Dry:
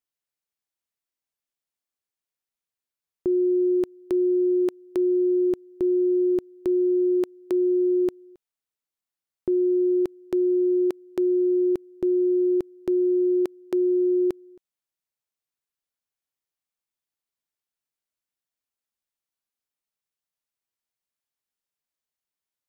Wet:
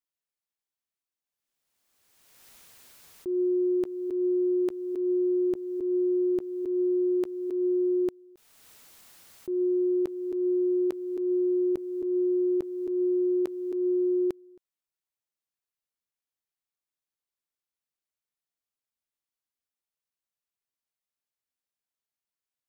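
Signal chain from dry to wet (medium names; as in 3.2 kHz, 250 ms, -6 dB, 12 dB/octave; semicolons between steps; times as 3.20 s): slow attack 145 ms; swell ahead of each attack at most 32 dB/s; trim -4 dB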